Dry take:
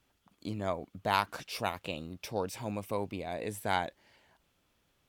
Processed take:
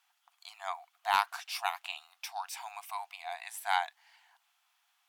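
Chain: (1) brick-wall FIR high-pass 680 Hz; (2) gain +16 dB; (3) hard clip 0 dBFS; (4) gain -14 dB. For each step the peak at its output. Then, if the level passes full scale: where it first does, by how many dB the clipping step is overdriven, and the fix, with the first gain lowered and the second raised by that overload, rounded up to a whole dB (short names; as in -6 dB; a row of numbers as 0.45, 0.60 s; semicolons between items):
-11.5, +4.5, 0.0, -14.0 dBFS; step 2, 4.5 dB; step 2 +11 dB, step 4 -9 dB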